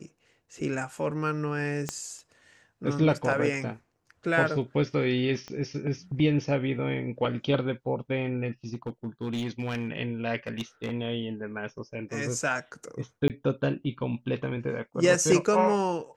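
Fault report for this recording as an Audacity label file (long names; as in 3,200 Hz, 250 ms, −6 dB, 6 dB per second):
1.890000	1.890000	click −15 dBFS
5.480000	5.480000	click −25 dBFS
8.730000	9.890000	clipping −26.5 dBFS
10.470000	10.930000	clipping −26.5 dBFS
13.280000	13.300000	drop-out 18 ms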